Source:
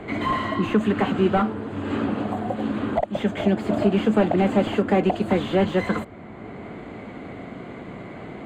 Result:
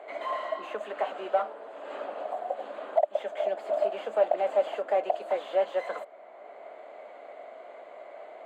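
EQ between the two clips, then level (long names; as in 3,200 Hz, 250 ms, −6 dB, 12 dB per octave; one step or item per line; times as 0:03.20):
four-pole ladder high-pass 560 Hz, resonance 70%
0.0 dB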